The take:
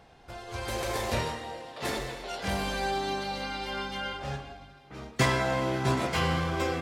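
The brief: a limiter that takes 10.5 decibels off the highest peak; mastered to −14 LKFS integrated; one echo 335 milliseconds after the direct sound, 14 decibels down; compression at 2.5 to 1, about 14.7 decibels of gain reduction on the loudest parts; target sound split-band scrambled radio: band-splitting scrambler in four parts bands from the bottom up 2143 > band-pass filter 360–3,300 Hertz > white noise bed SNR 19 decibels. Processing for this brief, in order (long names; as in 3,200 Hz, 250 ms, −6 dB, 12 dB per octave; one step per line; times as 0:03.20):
downward compressor 2.5 to 1, threshold −43 dBFS
brickwall limiter −33 dBFS
single-tap delay 335 ms −14 dB
band-splitting scrambler in four parts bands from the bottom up 2143
band-pass filter 360–3,300 Hz
white noise bed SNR 19 dB
level +28 dB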